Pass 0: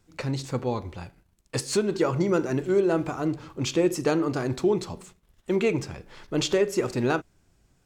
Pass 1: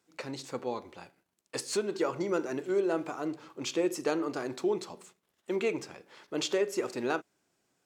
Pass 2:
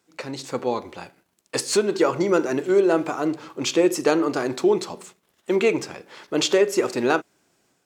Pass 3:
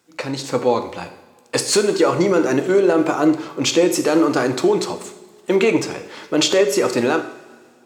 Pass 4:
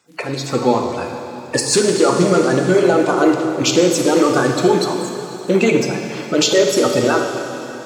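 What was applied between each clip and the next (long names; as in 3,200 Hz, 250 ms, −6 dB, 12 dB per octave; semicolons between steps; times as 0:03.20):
high-pass filter 290 Hz 12 dB per octave; level −5 dB
automatic gain control gain up to 4.5 dB; level +6 dB
brickwall limiter −12.5 dBFS, peak gain reduction 7 dB; on a send at −8 dB: convolution reverb, pre-delay 3 ms; on the sum: level +6 dB
spectral magnitudes quantised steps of 30 dB; dense smooth reverb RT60 3.5 s, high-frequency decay 1×, DRR 4 dB; level +2 dB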